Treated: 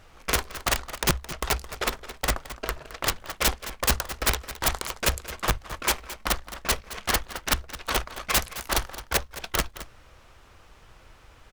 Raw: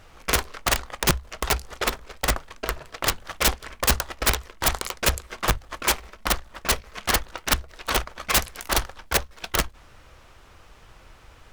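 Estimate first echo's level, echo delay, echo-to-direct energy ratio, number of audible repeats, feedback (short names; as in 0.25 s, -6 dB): -14.5 dB, 0.217 s, -14.5 dB, 1, no steady repeat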